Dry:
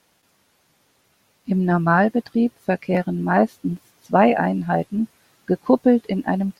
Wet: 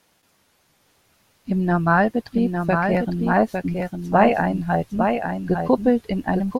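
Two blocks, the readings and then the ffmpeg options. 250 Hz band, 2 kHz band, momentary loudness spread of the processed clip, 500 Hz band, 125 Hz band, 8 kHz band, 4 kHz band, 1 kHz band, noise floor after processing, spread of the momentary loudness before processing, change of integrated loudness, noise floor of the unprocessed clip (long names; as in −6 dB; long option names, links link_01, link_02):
−1.0 dB, +1.0 dB, 8 LU, −0.5 dB, +0.5 dB, can't be measured, +1.0 dB, +0.5 dB, −64 dBFS, 12 LU, −0.5 dB, −64 dBFS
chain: -filter_complex "[0:a]asubboost=boost=5.5:cutoff=100,asplit=2[link_01][link_02];[link_02]aecho=0:1:855:0.562[link_03];[link_01][link_03]amix=inputs=2:normalize=0"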